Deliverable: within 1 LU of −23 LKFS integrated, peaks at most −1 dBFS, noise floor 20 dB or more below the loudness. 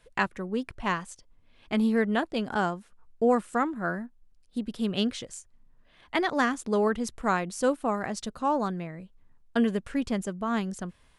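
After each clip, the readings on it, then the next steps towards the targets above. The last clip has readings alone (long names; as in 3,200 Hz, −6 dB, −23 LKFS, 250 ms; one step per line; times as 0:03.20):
integrated loudness −29.0 LKFS; sample peak −10.5 dBFS; target loudness −23.0 LKFS
→ level +6 dB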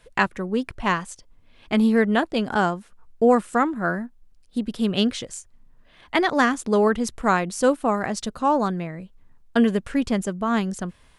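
integrated loudness −23.0 LKFS; sample peak −4.5 dBFS; background noise floor −55 dBFS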